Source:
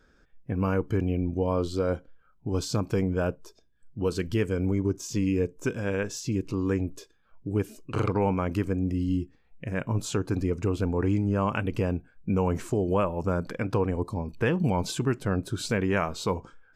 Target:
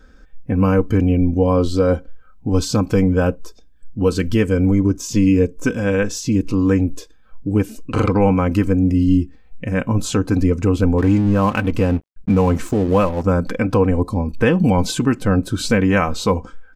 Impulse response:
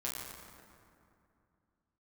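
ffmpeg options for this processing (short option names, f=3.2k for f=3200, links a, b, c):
-filter_complex "[0:a]lowshelf=f=130:g=8,aecho=1:1:3.9:0.53,asettb=1/sr,asplit=3[a][b][c];[a]atrim=end=10.984[d];[b]atrim=start=10.98:end=13.26,asetpts=PTS-STARTPTS,afade=t=in:d=0.004:c=qsin,afade=t=out:st=2.276:d=0.004:c=qsin,aeval=exprs='sgn(val(0))*max(abs(val(0))-0.00841,0)':c=same[e];[c]atrim=start=13.256[f];[d][e]acrossfade=d=0.004:c1=hsin:c2=qsin[g];[g][f]acrossfade=d=0.004:c1=qsin:c2=hsin,volume=8dB"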